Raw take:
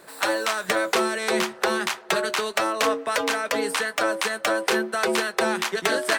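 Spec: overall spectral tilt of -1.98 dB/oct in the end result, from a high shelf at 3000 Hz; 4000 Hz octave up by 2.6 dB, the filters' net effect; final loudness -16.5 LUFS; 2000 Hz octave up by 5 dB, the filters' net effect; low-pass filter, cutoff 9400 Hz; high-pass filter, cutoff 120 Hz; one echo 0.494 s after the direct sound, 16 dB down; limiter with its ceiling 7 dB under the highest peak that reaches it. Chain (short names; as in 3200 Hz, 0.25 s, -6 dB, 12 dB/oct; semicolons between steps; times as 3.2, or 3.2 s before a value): HPF 120 Hz; LPF 9400 Hz; bell 2000 Hz +7.5 dB; high shelf 3000 Hz -6.5 dB; bell 4000 Hz +5.5 dB; limiter -11.5 dBFS; echo 0.494 s -16 dB; gain +6.5 dB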